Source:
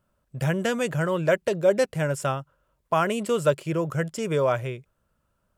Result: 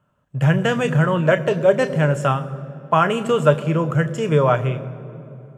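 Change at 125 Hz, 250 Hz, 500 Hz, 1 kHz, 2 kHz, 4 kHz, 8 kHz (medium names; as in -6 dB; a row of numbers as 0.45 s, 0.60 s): +10.0 dB, +7.5 dB, +5.0 dB, +7.5 dB, +6.5 dB, +5.0 dB, -1.5 dB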